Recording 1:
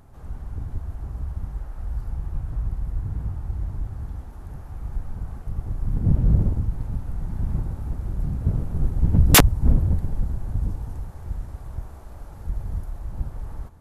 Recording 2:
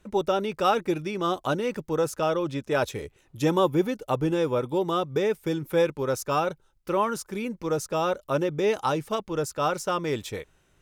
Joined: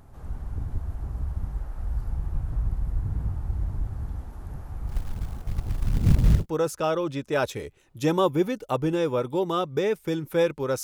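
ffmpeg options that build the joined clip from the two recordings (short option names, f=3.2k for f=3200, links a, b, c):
-filter_complex "[0:a]asplit=3[a][b][c];[a]afade=t=out:st=4.87:d=0.02[d];[b]acrusher=bits=6:mode=log:mix=0:aa=0.000001,afade=t=in:st=4.87:d=0.02,afade=t=out:st=6.46:d=0.02[e];[c]afade=t=in:st=6.46:d=0.02[f];[d][e][f]amix=inputs=3:normalize=0,apad=whole_dur=10.83,atrim=end=10.83,atrim=end=6.46,asetpts=PTS-STARTPTS[g];[1:a]atrim=start=1.71:end=6.22,asetpts=PTS-STARTPTS[h];[g][h]acrossfade=d=0.14:c1=tri:c2=tri"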